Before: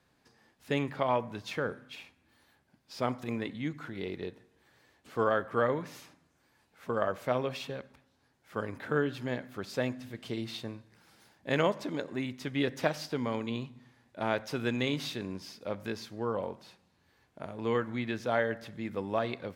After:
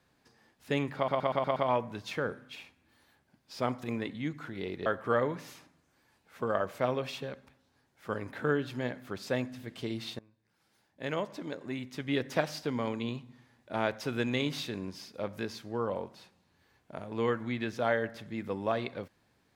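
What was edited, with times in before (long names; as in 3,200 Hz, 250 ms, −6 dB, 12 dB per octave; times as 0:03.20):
0:00.96: stutter 0.12 s, 6 plays
0:04.26–0:05.33: remove
0:10.66–0:12.81: fade in, from −23 dB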